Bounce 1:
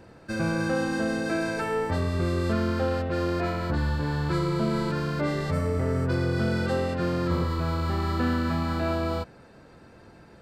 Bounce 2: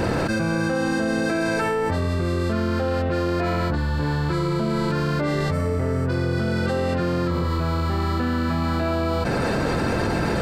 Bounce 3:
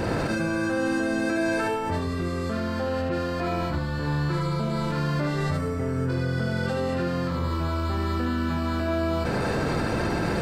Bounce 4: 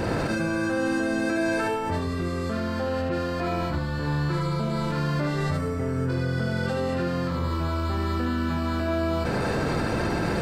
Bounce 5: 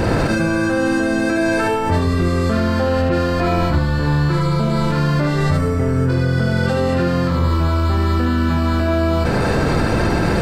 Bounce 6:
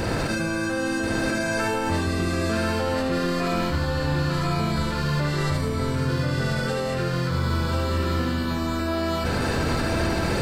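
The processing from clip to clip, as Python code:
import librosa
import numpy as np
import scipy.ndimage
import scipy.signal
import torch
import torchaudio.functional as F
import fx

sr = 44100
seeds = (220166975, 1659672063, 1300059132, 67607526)

y1 = fx.env_flatten(x, sr, amount_pct=100)
y2 = y1 + 10.0 ** (-4.5 / 20.0) * np.pad(y1, (int(76 * sr / 1000.0), 0))[:len(y1)]
y2 = y2 * 10.0 ** (-4.5 / 20.0)
y3 = y2
y4 = fx.low_shelf(y3, sr, hz=73.0, db=8.0)
y4 = fx.rider(y4, sr, range_db=10, speed_s=0.5)
y4 = y4 * 10.0 ** (8.0 / 20.0)
y5 = fx.high_shelf(y4, sr, hz=2200.0, db=8.0)
y5 = y5 + 10.0 ** (-4.0 / 20.0) * np.pad(y5, (int(1038 * sr / 1000.0), 0))[:len(y5)]
y5 = y5 * 10.0 ** (-9.0 / 20.0)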